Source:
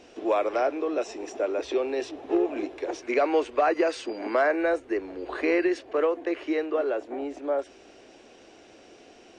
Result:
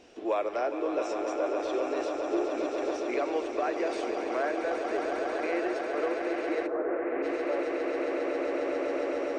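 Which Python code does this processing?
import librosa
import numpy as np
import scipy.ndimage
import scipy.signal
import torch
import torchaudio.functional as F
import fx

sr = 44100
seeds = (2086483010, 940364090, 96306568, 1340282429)

y = fx.echo_swell(x, sr, ms=136, loudest=8, wet_db=-9)
y = fx.rider(y, sr, range_db=10, speed_s=0.5)
y = fx.lowpass(y, sr, hz=fx.line((6.66, 1300.0), (7.22, 2500.0)), slope=24, at=(6.66, 7.22), fade=0.02)
y = fx.rev_schroeder(y, sr, rt60_s=0.87, comb_ms=38, drr_db=19.5)
y = y * 10.0 ** (-7.0 / 20.0)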